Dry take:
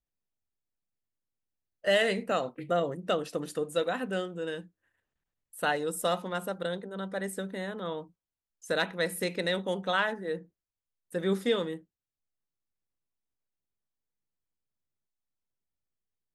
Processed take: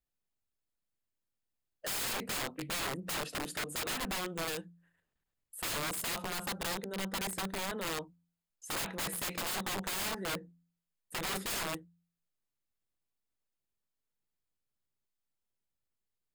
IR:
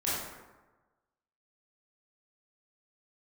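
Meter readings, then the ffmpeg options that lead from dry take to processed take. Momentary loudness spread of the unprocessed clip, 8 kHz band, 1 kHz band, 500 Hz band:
9 LU, +7.0 dB, -5.0 dB, -12.5 dB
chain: -af "aeval=exprs='(mod(33.5*val(0)+1,2)-1)/33.5':c=same,bandreject=f=5800:w=12,bandreject=f=85.64:t=h:w=4,bandreject=f=171.28:t=h:w=4,bandreject=f=256.92:t=h:w=4"

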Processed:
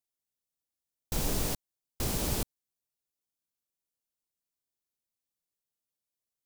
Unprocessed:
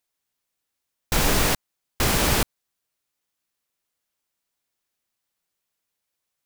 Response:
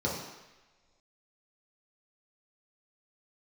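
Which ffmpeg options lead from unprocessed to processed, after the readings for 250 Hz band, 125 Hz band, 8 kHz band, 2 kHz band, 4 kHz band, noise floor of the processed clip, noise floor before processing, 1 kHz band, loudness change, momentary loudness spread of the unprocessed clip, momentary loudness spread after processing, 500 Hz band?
-9.5 dB, -8.5 dB, -10.0 dB, -18.0 dB, -13.0 dB, under -85 dBFS, -82 dBFS, -15.0 dB, -10.5 dB, 8 LU, 8 LU, -11.0 dB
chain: -af "equalizer=f=1700:t=o:w=2.2:g=-10.5,volume=0.376"

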